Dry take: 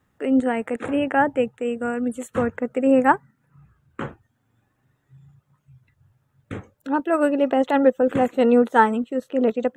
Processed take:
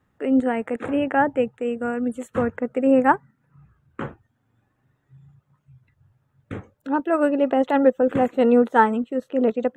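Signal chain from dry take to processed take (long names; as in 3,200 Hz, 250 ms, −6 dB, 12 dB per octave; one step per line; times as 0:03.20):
high-shelf EQ 3,800 Hz −7.5 dB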